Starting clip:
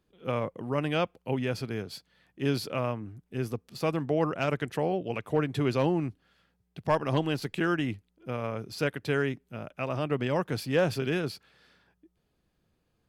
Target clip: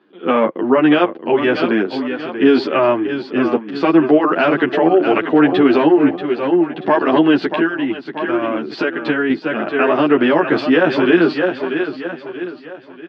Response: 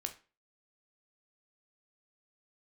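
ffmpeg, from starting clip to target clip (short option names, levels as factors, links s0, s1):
-filter_complex "[0:a]highpass=f=230:w=0.5412,highpass=f=230:w=1.3066,equalizer=f=340:t=q:w=4:g=7,equalizer=f=500:t=q:w=4:g=-5,equalizer=f=1600:t=q:w=4:g=4,equalizer=f=2300:t=q:w=4:g=-4,lowpass=f=3300:w=0.5412,lowpass=f=3300:w=1.3066,aecho=1:1:634|1268|1902|2536:0.282|0.116|0.0474|0.0194,asettb=1/sr,asplit=3[s0][s1][s2];[s0]atrim=end=7.364[s3];[s1]atrim=start=7.36:end=9.3,asetpts=PTS-STARTPTS,afade=t=in:d=0.004:c=qsin,afade=t=out:st=1.936:d=0.004:c=qsin,acompressor=threshold=0.02:ratio=5[s4];[s2]atrim=start=9.296[s5];[s3][s4]acrossfade=d=0.004:c1=hsin:c2=qsin[s6];[s6][s5]acrossfade=d=0.004:c1=qsin:c2=hsin,alimiter=level_in=12.6:limit=0.891:release=50:level=0:latency=1,asplit=2[s7][s8];[s8]adelay=10.5,afreqshift=-2.2[s9];[s7][s9]amix=inputs=2:normalize=1"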